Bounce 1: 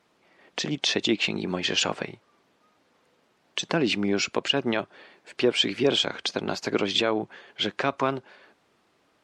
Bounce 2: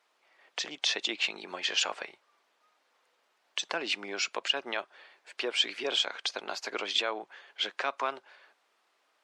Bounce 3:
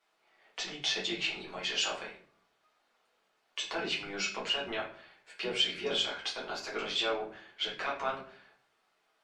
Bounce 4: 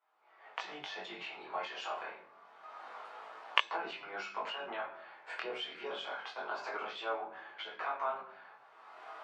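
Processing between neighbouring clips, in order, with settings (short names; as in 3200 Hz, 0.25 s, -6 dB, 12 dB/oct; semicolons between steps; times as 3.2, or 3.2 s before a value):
HPF 680 Hz 12 dB/oct; gain -3.5 dB
octaver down 1 oct, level -5 dB; shoebox room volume 47 m³, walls mixed, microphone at 1.1 m; gain -8.5 dB
recorder AGC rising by 31 dB/s; band-pass 970 Hz, Q 1.7; chorus 0.27 Hz, delay 17.5 ms, depth 6.7 ms; gain +3 dB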